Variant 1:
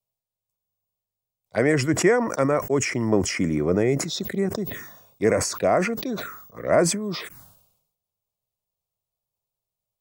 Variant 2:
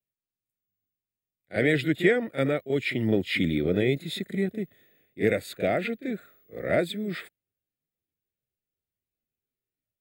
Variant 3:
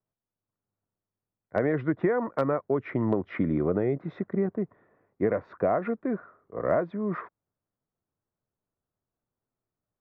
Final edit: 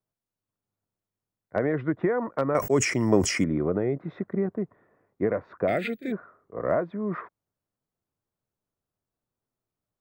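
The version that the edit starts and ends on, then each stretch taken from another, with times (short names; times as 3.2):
3
2.55–3.44 from 1
5.68–6.12 from 2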